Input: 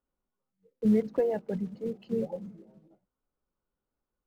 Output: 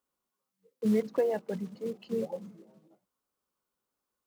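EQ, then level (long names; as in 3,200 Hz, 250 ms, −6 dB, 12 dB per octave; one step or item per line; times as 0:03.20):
high-pass filter 230 Hz 6 dB per octave
parametric band 1,100 Hz +5.5 dB 0.31 octaves
high-shelf EQ 2,700 Hz +8 dB
0.0 dB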